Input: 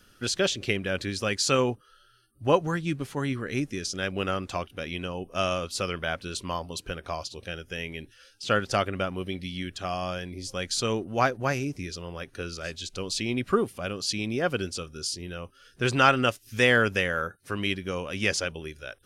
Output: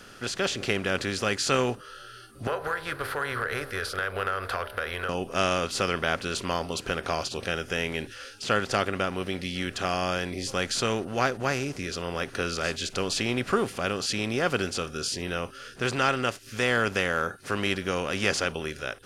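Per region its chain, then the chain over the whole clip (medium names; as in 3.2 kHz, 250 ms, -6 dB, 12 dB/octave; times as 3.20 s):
2.47–5.09 s: FFT filter 100 Hz 0 dB, 170 Hz -25 dB, 310 Hz -22 dB, 460 Hz +2 dB, 800 Hz -4 dB, 1.5 kHz +12 dB, 2.6 kHz -9 dB, 4.3 kHz -3 dB, 6.8 kHz -26 dB, 11 kHz +9 dB + compression 4:1, threshold -33 dBFS + de-hum 66.86 Hz, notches 15
whole clip: spectral levelling over time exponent 0.6; level rider gain up to 6.5 dB; trim -8 dB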